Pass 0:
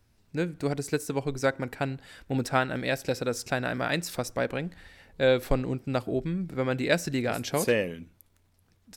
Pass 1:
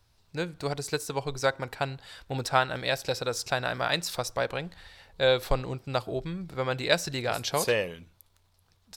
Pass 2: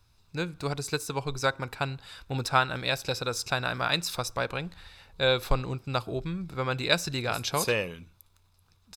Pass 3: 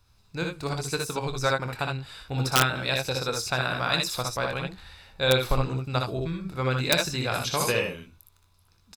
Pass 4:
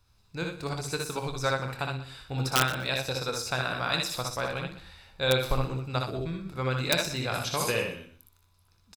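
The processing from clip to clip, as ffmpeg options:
-af "equalizer=f=250:t=o:w=1:g=-10,equalizer=f=1000:t=o:w=1:g=5,equalizer=f=2000:t=o:w=1:g=-3,equalizer=f=4000:t=o:w=1:g=7"
-af "aecho=1:1:0.8:0.34"
-af "aecho=1:1:24|62|77:0.282|0.596|0.501,aeval=exprs='(mod(2.99*val(0)+1,2)-1)/2.99':c=same"
-af "aecho=1:1:122|244:0.2|0.0419,volume=0.708"

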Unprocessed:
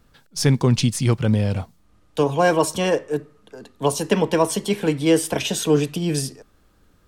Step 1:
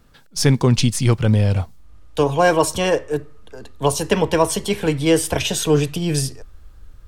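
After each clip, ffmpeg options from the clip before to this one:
-af "asubboost=boost=8.5:cutoff=74,volume=1.41"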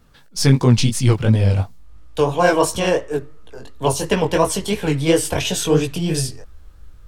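-af "flanger=delay=16:depth=6.6:speed=2.9,volume=1.41"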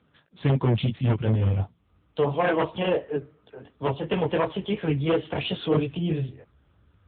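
-af "aeval=exprs='0.335*(abs(mod(val(0)/0.335+3,4)-2)-1)':c=same,volume=0.562" -ar 8000 -c:a libopencore_amrnb -b:a 7950

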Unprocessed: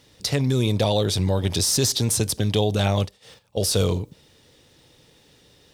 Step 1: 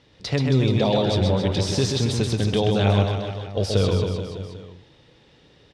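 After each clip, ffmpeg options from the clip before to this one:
-filter_complex "[0:a]lowpass=3600,asplit=2[s0][s1];[s1]aecho=0:1:130|273|430.3|603.3|793.7:0.631|0.398|0.251|0.158|0.1[s2];[s0][s2]amix=inputs=2:normalize=0"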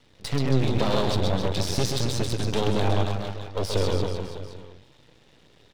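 -af "aeval=exprs='max(val(0),0)':c=same,volume=1.19"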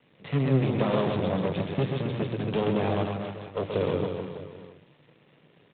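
-af "highpass=f=120:w=0.5412,highpass=f=120:w=1.3066,equalizer=f=160:t=q:w=4:g=6,equalizer=f=850:t=q:w=4:g=-4,equalizer=f=1500:t=q:w=4:g=-4,lowpass=f=2900:w=0.5412,lowpass=f=2900:w=1.3066,bandreject=f=60:t=h:w=6,bandreject=f=120:t=h:w=6,bandreject=f=180:t=h:w=6,bandreject=f=240:t=h:w=6,bandreject=f=300:t=h:w=6,bandreject=f=360:t=h:w=6" -ar 8000 -c:a adpcm_g726 -b:a 24k

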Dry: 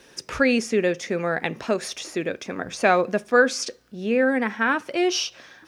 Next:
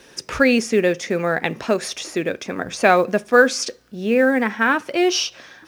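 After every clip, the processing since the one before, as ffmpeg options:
-af "acrusher=bits=9:mode=log:mix=0:aa=0.000001,volume=1.58"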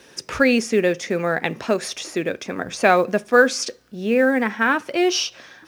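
-af "highpass=52,volume=0.891"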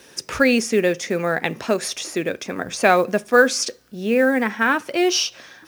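-af "highshelf=f=7700:g=8"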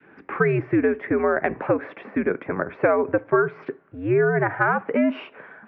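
-af "adynamicequalizer=threshold=0.0316:dfrequency=750:dqfactor=0.86:tfrequency=750:tqfactor=0.86:attack=5:release=100:ratio=0.375:range=3.5:mode=boostabove:tftype=bell,highpass=f=250:t=q:w=0.5412,highpass=f=250:t=q:w=1.307,lowpass=f=2200:t=q:w=0.5176,lowpass=f=2200:t=q:w=0.7071,lowpass=f=2200:t=q:w=1.932,afreqshift=-100,acompressor=threshold=0.158:ratio=6"

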